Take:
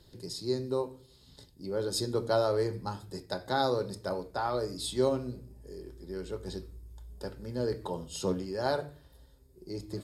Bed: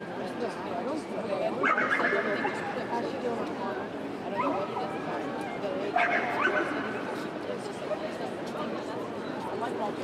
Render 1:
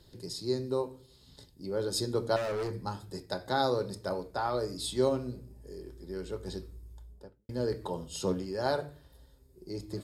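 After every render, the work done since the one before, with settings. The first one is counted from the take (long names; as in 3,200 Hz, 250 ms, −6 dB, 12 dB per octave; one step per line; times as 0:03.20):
0:02.36–0:02.79: gain into a clipping stage and back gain 30.5 dB
0:06.84–0:07.49: fade out and dull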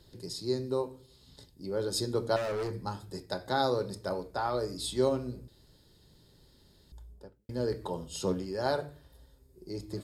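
0:05.48–0:06.92: fill with room tone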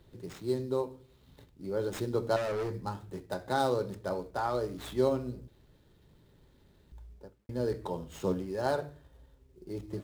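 running median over 9 samples
log-companded quantiser 8 bits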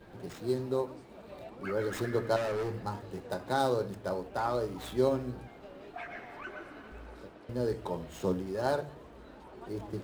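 mix in bed −17 dB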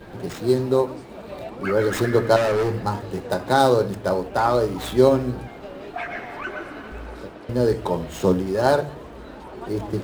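level +12 dB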